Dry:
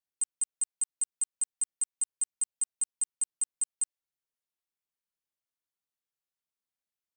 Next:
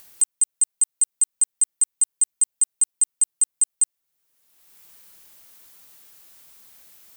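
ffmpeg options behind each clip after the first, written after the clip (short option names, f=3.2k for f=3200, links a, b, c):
-filter_complex "[0:a]asplit=2[a][b];[b]acompressor=mode=upward:threshold=-31dB:ratio=2.5,volume=-1dB[c];[a][c]amix=inputs=2:normalize=0,highshelf=f=10k:g=9.5,volume=2dB"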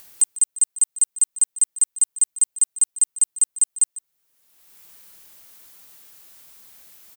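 -af "aecho=1:1:149:0.112,volume=2dB"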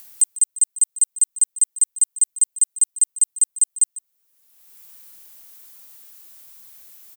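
-af "highshelf=f=6.4k:g=7,volume=-3.5dB"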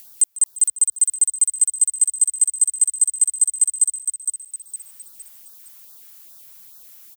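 -filter_complex "[0:a]asplit=5[a][b][c][d][e];[b]adelay=461,afreqshift=40,volume=-7dB[f];[c]adelay=922,afreqshift=80,volume=-15.6dB[g];[d]adelay=1383,afreqshift=120,volume=-24.3dB[h];[e]adelay=1844,afreqshift=160,volume=-32.9dB[i];[a][f][g][h][i]amix=inputs=5:normalize=0,afftfilt=real='re*(1-between(b*sr/1024,310*pow(2500/310,0.5+0.5*sin(2*PI*2.4*pts/sr))/1.41,310*pow(2500/310,0.5+0.5*sin(2*PI*2.4*pts/sr))*1.41))':imag='im*(1-between(b*sr/1024,310*pow(2500/310,0.5+0.5*sin(2*PI*2.4*pts/sr))/1.41,310*pow(2500/310,0.5+0.5*sin(2*PI*2.4*pts/sr))*1.41))':win_size=1024:overlap=0.75"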